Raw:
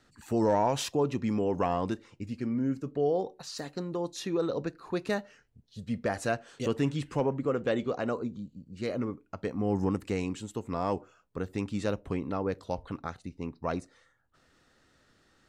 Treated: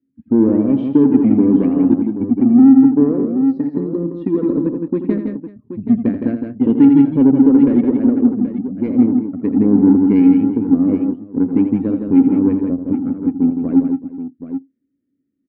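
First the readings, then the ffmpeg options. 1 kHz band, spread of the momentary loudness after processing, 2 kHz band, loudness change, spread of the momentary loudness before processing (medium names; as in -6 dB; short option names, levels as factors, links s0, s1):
+0.5 dB, 11 LU, no reading, +17.5 dB, 10 LU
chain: -filter_complex "[0:a]afftdn=nr=23:nf=-42,adynamicequalizer=threshold=0.00224:dfrequency=110:dqfactor=4.4:tfrequency=110:tqfactor=4.4:attack=5:release=100:ratio=0.375:range=2:mode=boostabove:tftype=bell,asplit=2[s0][s1];[s1]acompressor=threshold=0.0141:ratio=6,volume=0.841[s2];[s0][s2]amix=inputs=2:normalize=0,asplit=3[s3][s4][s5];[s3]bandpass=f=270:t=q:w=8,volume=1[s6];[s4]bandpass=f=2290:t=q:w=8,volume=0.501[s7];[s5]bandpass=f=3010:t=q:w=8,volume=0.355[s8];[s6][s7][s8]amix=inputs=3:normalize=0,adynamicsmooth=sensitivity=1.5:basefreq=520,aecho=1:1:82|164|188|377|778:0.316|0.501|0.119|0.106|0.282,alimiter=level_in=21.1:limit=0.891:release=50:level=0:latency=1,volume=0.891"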